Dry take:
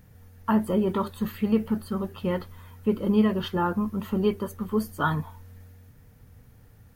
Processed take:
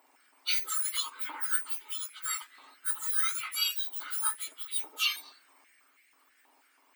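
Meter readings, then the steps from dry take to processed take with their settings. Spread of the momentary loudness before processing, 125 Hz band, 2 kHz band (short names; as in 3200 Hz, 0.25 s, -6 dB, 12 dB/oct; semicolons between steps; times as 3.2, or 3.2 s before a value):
9 LU, under -40 dB, 0.0 dB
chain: spectrum mirrored in octaves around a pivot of 2000 Hz; stepped high-pass 6.2 Hz 900–2100 Hz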